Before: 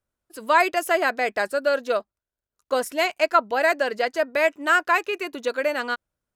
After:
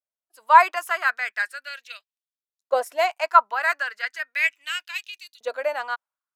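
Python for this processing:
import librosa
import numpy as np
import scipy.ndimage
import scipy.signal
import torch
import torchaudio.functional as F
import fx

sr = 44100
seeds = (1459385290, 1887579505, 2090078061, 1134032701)

y = fx.filter_lfo_highpass(x, sr, shape='saw_up', hz=0.37, low_hz=600.0, high_hz=4300.0, q=2.9)
y = fx.band_widen(y, sr, depth_pct=40)
y = F.gain(torch.from_numpy(y), -4.5).numpy()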